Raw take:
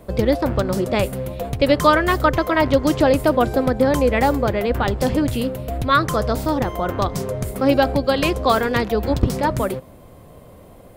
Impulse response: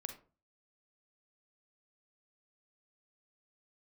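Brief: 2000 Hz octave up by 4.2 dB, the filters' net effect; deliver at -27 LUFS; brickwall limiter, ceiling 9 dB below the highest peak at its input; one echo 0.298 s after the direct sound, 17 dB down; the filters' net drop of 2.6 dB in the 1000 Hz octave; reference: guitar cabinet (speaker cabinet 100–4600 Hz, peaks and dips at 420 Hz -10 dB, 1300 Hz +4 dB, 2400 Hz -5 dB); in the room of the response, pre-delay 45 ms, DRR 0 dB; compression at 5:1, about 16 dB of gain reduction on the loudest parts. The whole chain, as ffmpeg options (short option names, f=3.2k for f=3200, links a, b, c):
-filter_complex "[0:a]equalizer=f=1k:t=o:g=-8.5,equalizer=f=2k:t=o:g=9,acompressor=threshold=-30dB:ratio=5,alimiter=level_in=1.5dB:limit=-24dB:level=0:latency=1,volume=-1.5dB,aecho=1:1:298:0.141,asplit=2[a][b];[1:a]atrim=start_sample=2205,adelay=45[c];[b][c]afir=irnorm=-1:irlink=0,volume=2.5dB[d];[a][d]amix=inputs=2:normalize=0,highpass=100,equalizer=f=420:t=q:w=4:g=-10,equalizer=f=1.3k:t=q:w=4:g=4,equalizer=f=2.4k:t=q:w=4:g=-5,lowpass=f=4.6k:w=0.5412,lowpass=f=4.6k:w=1.3066,volume=7dB"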